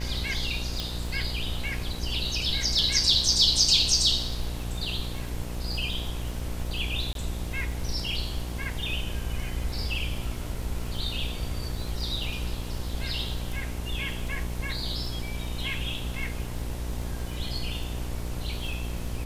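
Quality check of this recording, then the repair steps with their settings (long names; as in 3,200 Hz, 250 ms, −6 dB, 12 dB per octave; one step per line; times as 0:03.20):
mains buzz 60 Hz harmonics 18 −34 dBFS
surface crackle 50 per second −37 dBFS
0:00.80: click
0:07.13–0:07.15: drop-out 22 ms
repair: click removal
hum removal 60 Hz, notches 18
repair the gap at 0:07.13, 22 ms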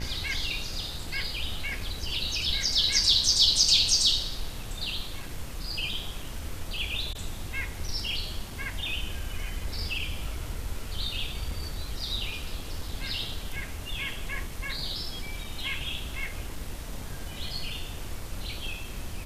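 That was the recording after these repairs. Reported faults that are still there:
none of them is left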